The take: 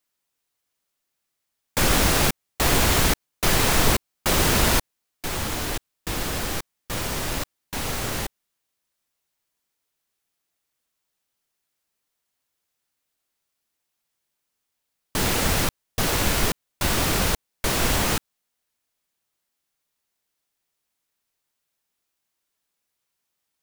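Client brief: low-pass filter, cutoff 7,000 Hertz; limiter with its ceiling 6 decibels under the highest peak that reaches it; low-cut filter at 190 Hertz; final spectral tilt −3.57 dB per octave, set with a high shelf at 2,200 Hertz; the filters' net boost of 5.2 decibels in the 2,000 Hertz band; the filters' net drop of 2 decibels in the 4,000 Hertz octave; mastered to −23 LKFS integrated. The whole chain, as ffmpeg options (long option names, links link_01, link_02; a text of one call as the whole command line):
ffmpeg -i in.wav -af "highpass=190,lowpass=7000,equalizer=frequency=2000:width_type=o:gain=6.5,highshelf=frequency=2200:gain=4,equalizer=frequency=4000:width_type=o:gain=-8.5,volume=1.5dB,alimiter=limit=-11dB:level=0:latency=1" out.wav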